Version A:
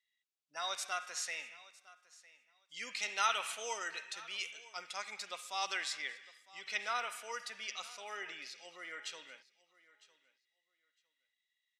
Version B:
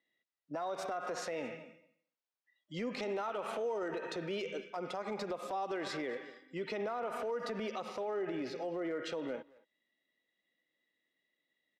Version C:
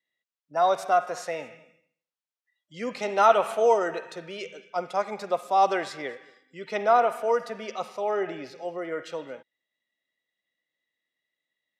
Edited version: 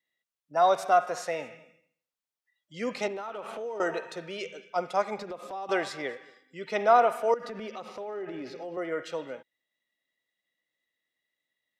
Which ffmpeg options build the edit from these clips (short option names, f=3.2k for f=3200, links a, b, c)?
-filter_complex "[1:a]asplit=3[a][b][c];[2:a]asplit=4[d][e][f][g];[d]atrim=end=3.082[h];[a]atrim=start=3.078:end=3.802[i];[e]atrim=start=3.798:end=5.182[j];[b]atrim=start=5.178:end=5.692[k];[f]atrim=start=5.688:end=7.342[l];[c]atrim=start=7.338:end=8.772[m];[g]atrim=start=8.768[n];[h][i]acrossfade=d=0.004:c1=hsin:c2=hsin[o];[o][j]acrossfade=d=0.004:c1=hsin:c2=hsin[p];[p][k]acrossfade=d=0.004:c1=hsin:c2=hsin[q];[q][l]acrossfade=d=0.004:c1=hsin:c2=hsin[r];[r][m]acrossfade=d=0.004:c1=hsin:c2=hsin[s];[s][n]acrossfade=d=0.004:c1=hsin:c2=hsin"